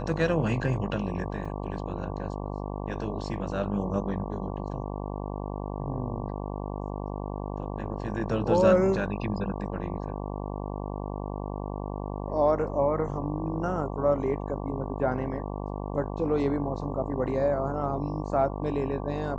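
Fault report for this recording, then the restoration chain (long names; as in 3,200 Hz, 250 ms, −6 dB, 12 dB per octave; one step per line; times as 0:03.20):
mains buzz 50 Hz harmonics 23 −34 dBFS
0:01.45: drop-out 4.7 ms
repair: hum removal 50 Hz, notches 23
repair the gap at 0:01.45, 4.7 ms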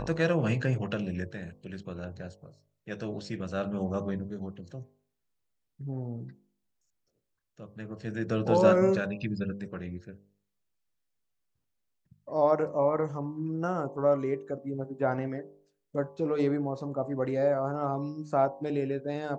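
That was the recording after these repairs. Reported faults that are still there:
none of them is left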